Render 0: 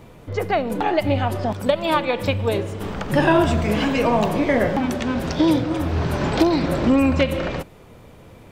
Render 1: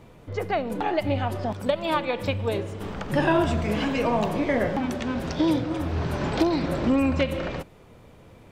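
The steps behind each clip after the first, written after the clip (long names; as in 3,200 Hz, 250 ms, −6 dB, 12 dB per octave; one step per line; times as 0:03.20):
high-shelf EQ 12,000 Hz −6 dB
level −5 dB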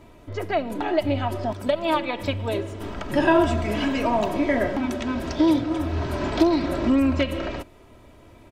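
comb filter 3.1 ms, depth 58%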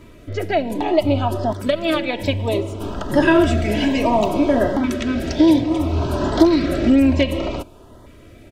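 auto-filter notch saw up 0.62 Hz 750–2,600 Hz
level +6 dB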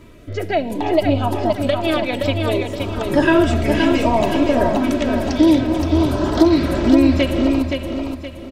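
repeating echo 521 ms, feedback 36%, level −5 dB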